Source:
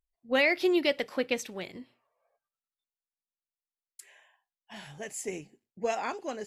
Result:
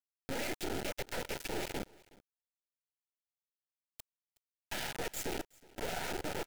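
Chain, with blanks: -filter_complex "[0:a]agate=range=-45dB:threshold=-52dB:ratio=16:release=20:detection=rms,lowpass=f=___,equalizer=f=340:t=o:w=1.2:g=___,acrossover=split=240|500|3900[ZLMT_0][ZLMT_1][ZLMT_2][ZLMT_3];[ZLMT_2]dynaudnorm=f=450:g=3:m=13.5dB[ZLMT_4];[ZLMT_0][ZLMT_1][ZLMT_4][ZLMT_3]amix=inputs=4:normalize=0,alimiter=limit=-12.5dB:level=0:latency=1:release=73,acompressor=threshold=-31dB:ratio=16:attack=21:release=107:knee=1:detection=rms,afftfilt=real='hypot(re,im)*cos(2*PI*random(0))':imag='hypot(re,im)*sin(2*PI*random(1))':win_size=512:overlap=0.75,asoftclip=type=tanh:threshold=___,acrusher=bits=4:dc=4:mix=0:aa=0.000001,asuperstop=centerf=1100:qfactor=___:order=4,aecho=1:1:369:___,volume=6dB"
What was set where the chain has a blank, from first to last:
11k, 14.5, -37dB, 4.3, 0.0668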